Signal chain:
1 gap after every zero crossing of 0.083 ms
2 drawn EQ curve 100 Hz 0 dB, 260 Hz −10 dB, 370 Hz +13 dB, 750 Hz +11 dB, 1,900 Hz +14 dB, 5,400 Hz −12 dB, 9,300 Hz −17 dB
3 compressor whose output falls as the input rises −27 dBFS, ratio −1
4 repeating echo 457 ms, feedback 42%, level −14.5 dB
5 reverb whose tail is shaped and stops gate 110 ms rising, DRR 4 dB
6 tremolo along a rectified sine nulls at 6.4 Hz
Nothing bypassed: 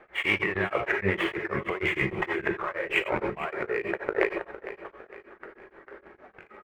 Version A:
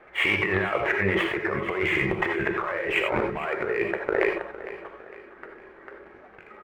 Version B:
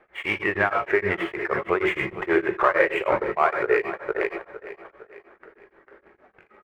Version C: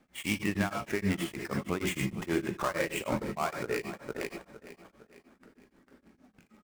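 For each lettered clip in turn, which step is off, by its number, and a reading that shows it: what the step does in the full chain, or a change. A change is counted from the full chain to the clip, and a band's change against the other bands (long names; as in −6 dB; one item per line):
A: 6, change in crest factor −3.0 dB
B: 3, change in crest factor −3.0 dB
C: 2, 2 kHz band −6.0 dB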